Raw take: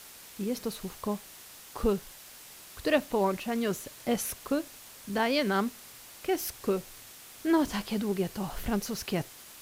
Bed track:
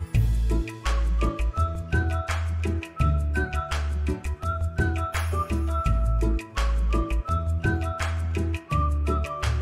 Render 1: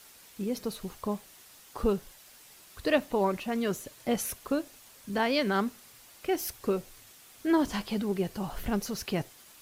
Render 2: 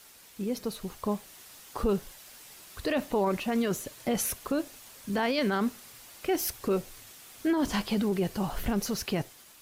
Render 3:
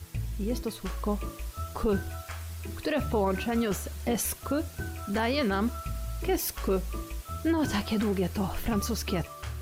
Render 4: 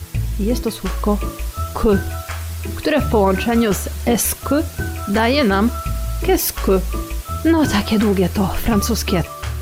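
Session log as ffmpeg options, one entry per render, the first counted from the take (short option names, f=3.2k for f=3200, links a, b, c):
-af "afftdn=nr=6:nf=-50"
-af "dynaudnorm=f=740:g=3:m=4dB,alimiter=limit=-19dB:level=0:latency=1:release=19"
-filter_complex "[1:a]volume=-12dB[a];[0:a][a]amix=inputs=2:normalize=0"
-af "volume=12dB"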